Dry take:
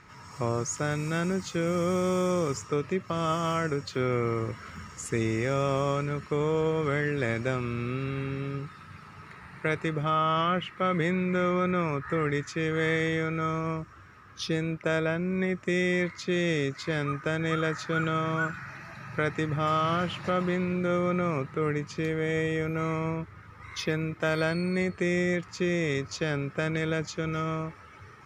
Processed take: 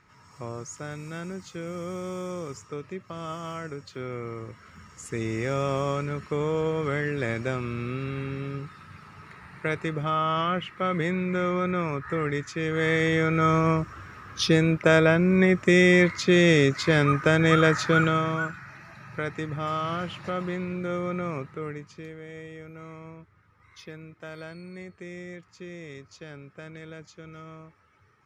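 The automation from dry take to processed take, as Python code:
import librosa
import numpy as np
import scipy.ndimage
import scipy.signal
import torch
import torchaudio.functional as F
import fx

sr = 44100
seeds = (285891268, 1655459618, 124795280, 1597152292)

y = fx.gain(x, sr, db=fx.line((4.68, -7.5), (5.48, 0.0), (12.6, 0.0), (13.55, 8.5), (17.89, 8.5), (18.59, -3.0), (21.37, -3.0), (22.24, -13.5)))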